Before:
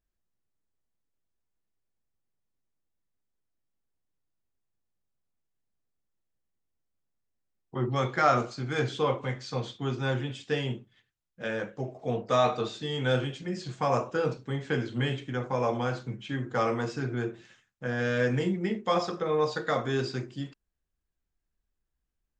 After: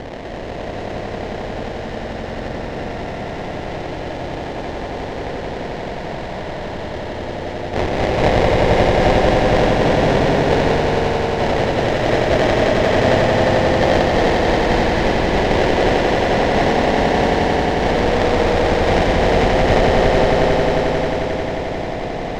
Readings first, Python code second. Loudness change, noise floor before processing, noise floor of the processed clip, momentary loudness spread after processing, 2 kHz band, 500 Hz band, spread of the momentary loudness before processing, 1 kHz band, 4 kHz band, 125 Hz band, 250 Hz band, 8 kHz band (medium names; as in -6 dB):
+12.5 dB, -83 dBFS, -27 dBFS, 12 LU, +15.0 dB, +15.5 dB, 10 LU, +15.0 dB, +14.5 dB, +12.0 dB, +14.5 dB, +14.5 dB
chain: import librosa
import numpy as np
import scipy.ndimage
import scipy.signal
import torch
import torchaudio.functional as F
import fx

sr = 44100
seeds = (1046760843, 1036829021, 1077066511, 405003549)

y = fx.bin_compress(x, sr, power=0.2)
y = scipy.signal.sosfilt(scipy.signal.butter(2, 310.0, 'highpass', fs=sr, output='sos'), y)
y = fx.notch(y, sr, hz=1100.0, q=6.5)
y = fx.sample_hold(y, sr, seeds[0], rate_hz=1300.0, jitter_pct=20)
y = fx.air_absorb(y, sr, metres=160.0)
y = fx.echo_swell(y, sr, ms=89, loudest=5, wet_db=-6.0)
y = y * librosa.db_to_amplitude(1.5)